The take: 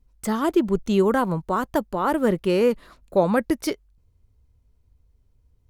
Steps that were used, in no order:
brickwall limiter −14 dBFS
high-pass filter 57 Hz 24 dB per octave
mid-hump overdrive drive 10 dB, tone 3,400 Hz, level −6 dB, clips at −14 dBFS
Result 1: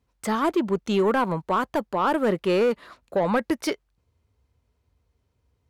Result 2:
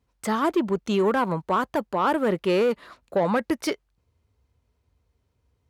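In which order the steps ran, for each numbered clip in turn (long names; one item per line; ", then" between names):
high-pass filter, then mid-hump overdrive, then brickwall limiter
mid-hump overdrive, then brickwall limiter, then high-pass filter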